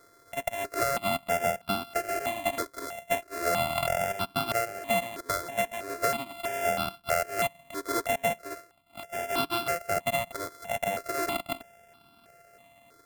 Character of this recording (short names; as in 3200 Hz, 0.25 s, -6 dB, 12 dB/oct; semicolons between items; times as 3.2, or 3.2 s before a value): a buzz of ramps at a fixed pitch in blocks of 64 samples; notches that jump at a steady rate 3.1 Hz 760–1900 Hz